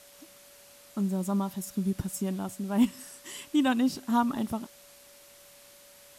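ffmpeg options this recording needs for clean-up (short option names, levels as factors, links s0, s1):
-af "bandreject=f=570:w=30,afftdn=nr=19:nf=-54"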